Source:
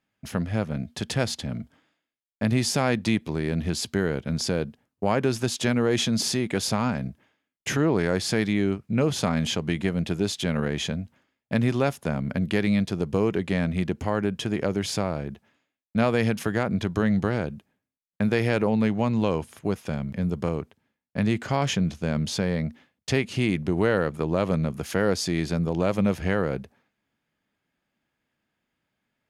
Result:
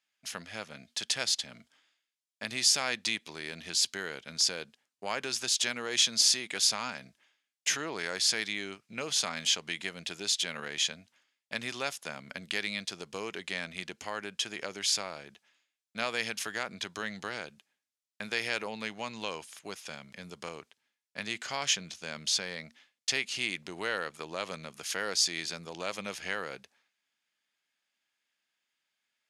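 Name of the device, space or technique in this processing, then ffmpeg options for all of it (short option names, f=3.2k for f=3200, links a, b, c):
piezo pickup straight into a mixer: -af "lowpass=6.2k,aderivative,volume=9dB"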